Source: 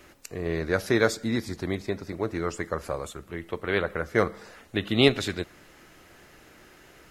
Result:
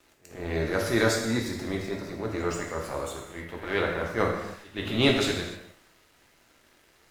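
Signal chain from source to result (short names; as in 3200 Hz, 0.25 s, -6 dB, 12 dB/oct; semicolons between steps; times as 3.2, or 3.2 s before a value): transient shaper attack -10 dB, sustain +2 dB; crossover distortion -51.5 dBFS; reverse echo 0.134 s -19 dB; non-linear reverb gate 0.33 s falling, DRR 0 dB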